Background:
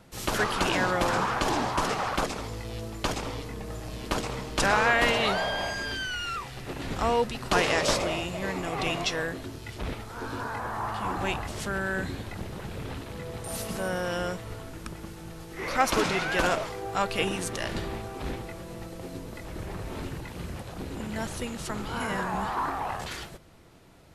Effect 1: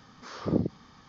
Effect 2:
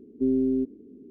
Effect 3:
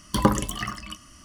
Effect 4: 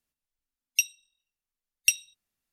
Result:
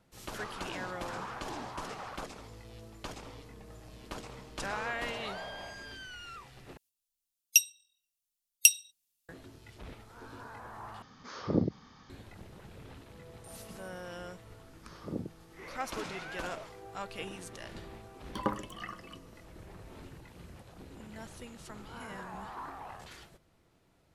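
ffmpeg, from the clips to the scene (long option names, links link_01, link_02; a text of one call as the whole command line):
ffmpeg -i bed.wav -i cue0.wav -i cue1.wav -i cue2.wav -i cue3.wav -filter_complex "[1:a]asplit=2[link_01][link_02];[0:a]volume=-13.5dB[link_03];[4:a]aexciter=amount=4.9:drive=3.9:freq=2600[link_04];[3:a]bass=frequency=250:gain=-9,treble=frequency=4000:gain=-13[link_05];[link_03]asplit=3[link_06][link_07][link_08];[link_06]atrim=end=6.774[link_09];[link_04]atrim=end=2.52,asetpts=PTS-STARTPTS,volume=-10.5dB[link_10];[link_07]atrim=start=9.286:end=11.024[link_11];[link_01]atrim=end=1.08,asetpts=PTS-STARTPTS,volume=-2dB[link_12];[link_08]atrim=start=12.096[link_13];[link_02]atrim=end=1.08,asetpts=PTS-STARTPTS,volume=-11.5dB,afade=type=in:duration=0.004:curve=hsin,afade=type=out:start_time=1.076:duration=0.004:curve=hsin,adelay=643860S[link_14];[link_05]atrim=end=1.24,asetpts=PTS-STARTPTS,volume=-10dB,afade=type=in:duration=0.004:curve=hsin,afade=type=out:start_time=1.236:duration=0.004:curve=hsin,adelay=18210[link_15];[link_09][link_10]acrossfade=duration=0.004:curve1=hsin:curve2=hsin[link_16];[link_16][link_11]acrossfade=duration=0.004:curve1=hsin:curve2=hsin[link_17];[link_17][link_12]acrossfade=duration=0.004:curve1=hsin:curve2=hsin[link_18];[link_18][link_13]acrossfade=duration=0.004:curve1=hsin:curve2=hsin[link_19];[link_19][link_14][link_15]amix=inputs=3:normalize=0" out.wav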